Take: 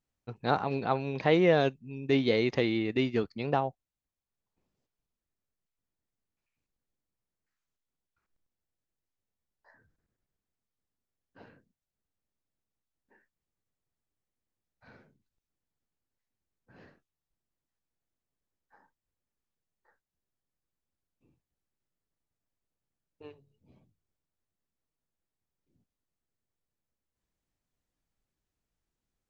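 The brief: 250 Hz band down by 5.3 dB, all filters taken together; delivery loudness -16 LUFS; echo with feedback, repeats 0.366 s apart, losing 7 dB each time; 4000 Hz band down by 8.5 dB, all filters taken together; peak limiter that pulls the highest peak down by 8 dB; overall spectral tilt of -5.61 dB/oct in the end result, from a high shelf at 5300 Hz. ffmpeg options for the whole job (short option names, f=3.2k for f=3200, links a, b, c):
-af "equalizer=f=250:t=o:g=-7.5,equalizer=f=4k:t=o:g=-8.5,highshelf=f=5.3k:g=-7.5,alimiter=limit=-21dB:level=0:latency=1,aecho=1:1:366|732|1098|1464|1830:0.447|0.201|0.0905|0.0407|0.0183,volume=18dB"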